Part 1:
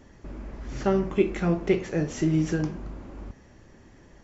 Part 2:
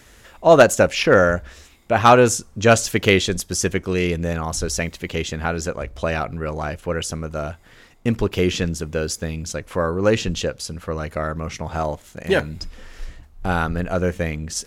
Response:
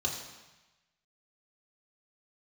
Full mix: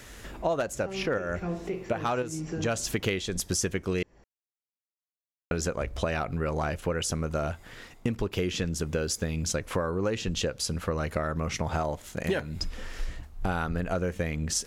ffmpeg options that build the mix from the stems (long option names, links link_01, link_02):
-filter_complex "[0:a]alimiter=limit=-19dB:level=0:latency=1:release=333,acontrast=74,volume=-11.5dB,asplit=3[link_01][link_02][link_03];[link_02]volume=-13dB[link_04];[1:a]volume=2dB,asplit=3[link_05][link_06][link_07];[link_05]atrim=end=4.03,asetpts=PTS-STARTPTS,afade=type=out:start_time=4.026:duration=0.004:curve=hsin[link_08];[link_06]atrim=start=4.03:end=5.51,asetpts=PTS-STARTPTS,volume=0[link_09];[link_07]atrim=start=5.51,asetpts=PTS-STARTPTS,afade=type=in:duration=0.004:curve=hsin[link_10];[link_08][link_09][link_10]concat=n=3:v=0:a=1[link_11];[link_03]apad=whole_len=646653[link_12];[link_11][link_12]sidechaincompress=threshold=-42dB:ratio=10:attack=20:release=274[link_13];[2:a]atrim=start_sample=2205[link_14];[link_04][link_14]afir=irnorm=-1:irlink=0[link_15];[link_01][link_13][link_15]amix=inputs=3:normalize=0,acompressor=threshold=-25dB:ratio=10"